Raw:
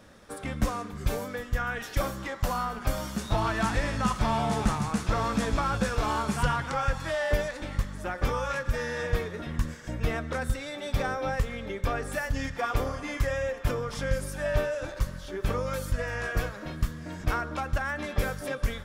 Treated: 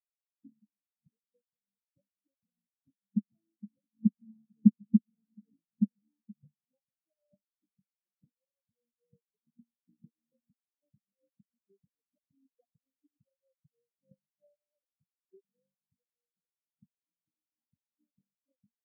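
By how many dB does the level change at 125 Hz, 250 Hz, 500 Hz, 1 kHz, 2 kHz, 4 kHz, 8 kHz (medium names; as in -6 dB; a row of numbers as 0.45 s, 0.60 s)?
-13.5 dB, -0.5 dB, under -40 dB, under -40 dB, under -40 dB, under -40 dB, under -40 dB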